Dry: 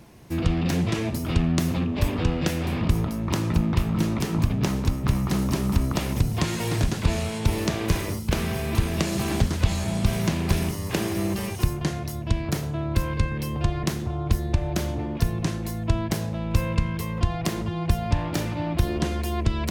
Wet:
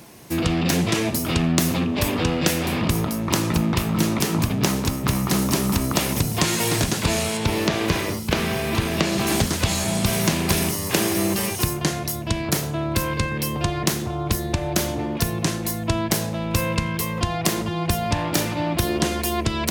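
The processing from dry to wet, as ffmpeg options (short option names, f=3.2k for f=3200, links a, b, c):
-filter_complex "[0:a]asettb=1/sr,asplit=3[a][b][c];[a]atrim=end=7.374[d];[b]atrim=start=7.37:end=9.27,asetpts=PTS-STARTPTS,afade=t=in:d=0.004:c=qsin,afade=t=out:st=1.896:d=0.004:c=qsin,acrossover=split=4900[e][f];[f]acompressor=threshold=-49dB:ratio=4:attack=1:release=60[g];[e][g]amix=inputs=2:normalize=0[h];[c]atrim=start=9.266[i];[d][h]acrossfade=d=0.004:c1=hsin:c2=qsin[j];[j][i]acrossfade=d=0.004:c1=qsin:c2=hsin,highpass=f=210:p=1,highshelf=f=5.1k:g=8,acontrast=53"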